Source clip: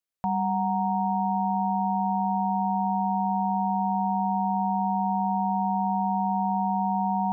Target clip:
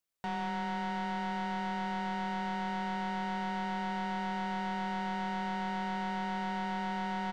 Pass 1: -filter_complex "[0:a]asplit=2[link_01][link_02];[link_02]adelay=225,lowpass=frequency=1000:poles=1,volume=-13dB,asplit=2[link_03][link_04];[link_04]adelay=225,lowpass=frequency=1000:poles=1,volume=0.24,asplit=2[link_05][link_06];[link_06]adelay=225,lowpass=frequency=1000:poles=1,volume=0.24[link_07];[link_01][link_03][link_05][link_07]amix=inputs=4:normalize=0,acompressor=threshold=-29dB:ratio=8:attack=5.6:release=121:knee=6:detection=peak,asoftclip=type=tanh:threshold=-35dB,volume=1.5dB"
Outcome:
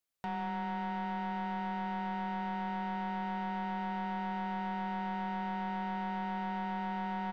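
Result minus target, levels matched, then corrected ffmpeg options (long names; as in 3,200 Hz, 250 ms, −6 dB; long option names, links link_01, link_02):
downward compressor: peak gain reduction +5 dB
-filter_complex "[0:a]asplit=2[link_01][link_02];[link_02]adelay=225,lowpass=frequency=1000:poles=1,volume=-13dB,asplit=2[link_03][link_04];[link_04]adelay=225,lowpass=frequency=1000:poles=1,volume=0.24,asplit=2[link_05][link_06];[link_06]adelay=225,lowpass=frequency=1000:poles=1,volume=0.24[link_07];[link_01][link_03][link_05][link_07]amix=inputs=4:normalize=0,acompressor=threshold=-22dB:ratio=8:attack=5.6:release=121:knee=6:detection=peak,asoftclip=type=tanh:threshold=-35dB,volume=1.5dB"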